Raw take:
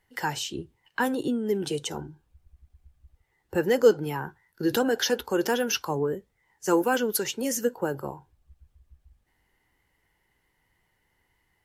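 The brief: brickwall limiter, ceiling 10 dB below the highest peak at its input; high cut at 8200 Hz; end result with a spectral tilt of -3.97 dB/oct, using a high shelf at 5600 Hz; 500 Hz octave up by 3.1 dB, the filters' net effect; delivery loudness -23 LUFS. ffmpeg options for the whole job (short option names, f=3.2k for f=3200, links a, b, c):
-af "lowpass=8.2k,equalizer=f=500:t=o:g=3.5,highshelf=f=5.6k:g=-6.5,volume=4.5dB,alimiter=limit=-10.5dB:level=0:latency=1"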